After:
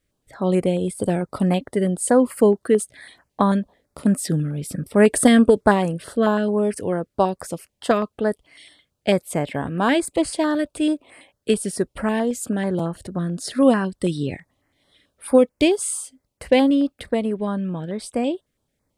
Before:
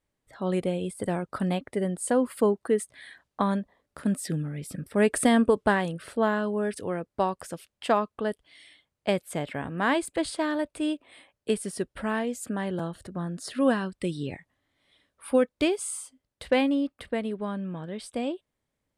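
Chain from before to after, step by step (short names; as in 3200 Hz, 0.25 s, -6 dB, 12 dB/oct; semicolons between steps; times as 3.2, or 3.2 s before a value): stepped notch 9.1 Hz 890–3600 Hz; gain +8 dB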